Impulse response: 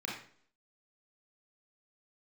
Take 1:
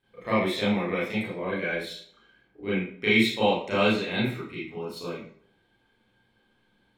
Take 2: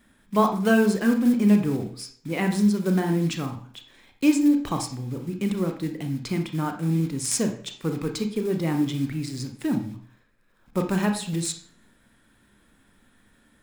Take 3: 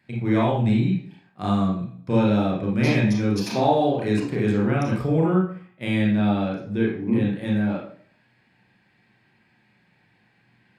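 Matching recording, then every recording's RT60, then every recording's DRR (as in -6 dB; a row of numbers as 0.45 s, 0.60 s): 3; 0.55 s, 0.55 s, 0.55 s; -10.0 dB, 5.0 dB, -3.5 dB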